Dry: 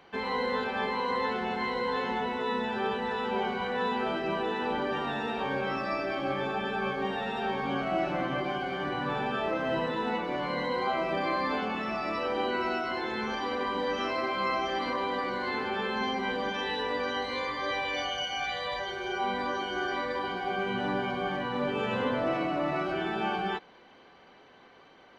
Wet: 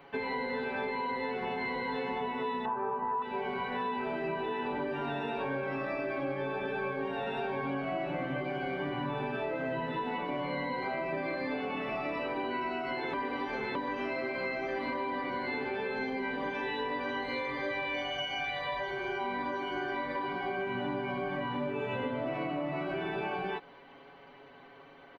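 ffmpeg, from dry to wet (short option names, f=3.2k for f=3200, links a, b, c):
-filter_complex "[0:a]asettb=1/sr,asplit=3[a][b][c];[a]atrim=end=2.654[d];[b]atrim=start=2.65:end=3.22,asetpts=PTS-STARTPTS,afade=t=in:d=0.004:c=qsin,afade=t=out:st=0.566:d=0.004:c=qsin,lowpass=f=1.1k:t=q:w=5.4[e];[c]atrim=start=3.216[f];[d][e]acrossfade=d=0.004:c1=hsin:c2=qsin[g];[g][f]acrossfade=d=0.004:c1=qsin:c2=hsin,asplit=3[h][i][j];[h]atrim=end=13.132[k];[i]atrim=start=13.128:end=13.752,asetpts=PTS-STARTPTS,areverse[l];[j]atrim=start=13.748[m];[k][l]acrossfade=d=0.004:c1=hsin:c2=hsin[n];[n][m]acrossfade=d=0.004:c1=hsin:c2=hsin,equalizer=f=6.4k:t=o:w=1.3:g=-12.5,aecho=1:1:7.2:0.95,acompressor=threshold=-31dB:ratio=6"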